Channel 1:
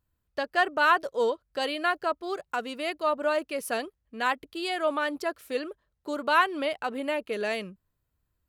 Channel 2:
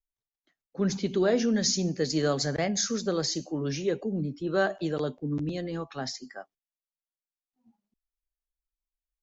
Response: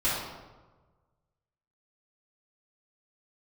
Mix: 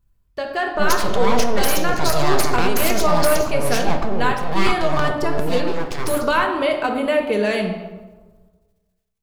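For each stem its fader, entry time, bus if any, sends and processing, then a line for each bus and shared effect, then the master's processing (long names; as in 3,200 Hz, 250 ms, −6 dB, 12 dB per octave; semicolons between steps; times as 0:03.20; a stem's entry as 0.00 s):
−0.5 dB, 0.00 s, send −11.5 dB, downward compressor 4 to 1, threshold −25 dBFS, peak gain reduction 8 dB; low-shelf EQ 210 Hz +11.5 dB
+3.0 dB, 0.00 s, send −17.5 dB, transient designer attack −3 dB, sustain +10 dB; full-wave rectification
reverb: on, RT60 1.3 s, pre-delay 3 ms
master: automatic gain control gain up to 6.5 dB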